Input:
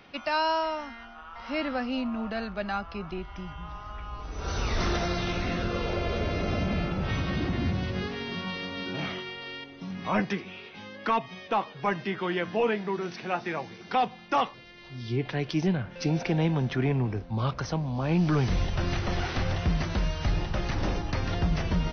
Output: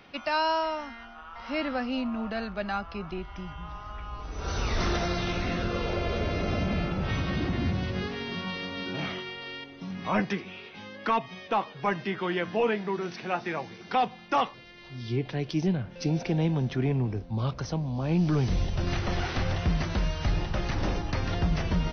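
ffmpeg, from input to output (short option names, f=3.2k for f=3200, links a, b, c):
-filter_complex "[0:a]asettb=1/sr,asplit=3[a][b][c];[a]atrim=end=15.194[d];[b]atrim=start=15.19:end=18.87,asetpts=PTS-STARTPTS,afade=t=in:d=0.004:c=qsin,afade=t=out:st=3.676:d=0.004:c=qsin,equalizer=f=1.5k:t=o:w=2.1:g=-6[e];[c]atrim=start=18.866[f];[d][e]acrossfade=d=0.004:c1=hsin:c2=qsin[g];[g][f]acrossfade=d=0.004:c1=qsin:c2=hsin"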